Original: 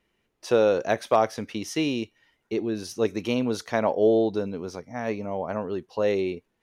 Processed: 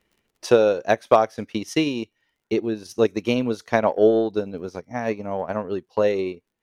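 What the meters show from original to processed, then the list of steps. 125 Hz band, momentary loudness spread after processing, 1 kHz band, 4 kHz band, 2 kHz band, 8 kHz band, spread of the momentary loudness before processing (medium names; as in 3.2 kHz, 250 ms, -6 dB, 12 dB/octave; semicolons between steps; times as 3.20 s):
+2.5 dB, 13 LU, +4.0 dB, +2.5 dB, +4.0 dB, +0.5 dB, 11 LU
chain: crackle 38 per s -52 dBFS; transient shaper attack +5 dB, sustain -9 dB; trim +2 dB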